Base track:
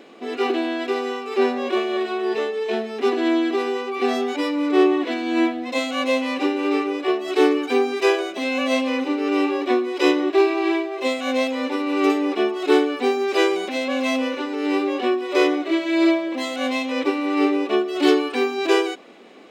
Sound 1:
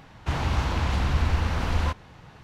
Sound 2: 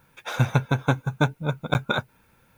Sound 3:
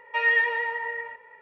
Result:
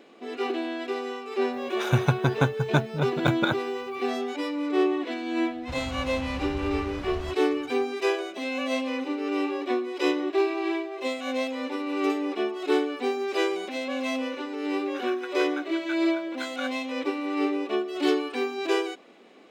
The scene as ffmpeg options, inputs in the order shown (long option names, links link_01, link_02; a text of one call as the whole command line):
ffmpeg -i bed.wav -i cue0.wav -i cue1.wav -filter_complex "[2:a]asplit=2[link_01][link_02];[0:a]volume=-7dB[link_03];[link_01]highpass=52[link_04];[link_02]highpass=frequency=1600:width_type=q:width=3[link_05];[link_04]atrim=end=2.57,asetpts=PTS-STARTPTS,volume=-1dB,afade=type=in:duration=0.004:curve=hsin,afade=type=out:start_time=2.566:duration=0.004:curve=hsin,adelay=1530[link_06];[1:a]atrim=end=2.43,asetpts=PTS-STARTPTS,volume=-11.5dB,afade=type=in:duration=0.004:curve=hsin,afade=type=out:start_time=2.426:duration=0.004:curve=hsin,adelay=238581S[link_07];[link_05]atrim=end=2.57,asetpts=PTS-STARTPTS,volume=-16dB,afade=type=in:duration=0.004:curve=hsin,afade=type=out:start_time=2.566:duration=0.004:curve=hsin,adelay=14680[link_08];[link_03][link_06][link_07][link_08]amix=inputs=4:normalize=0" out.wav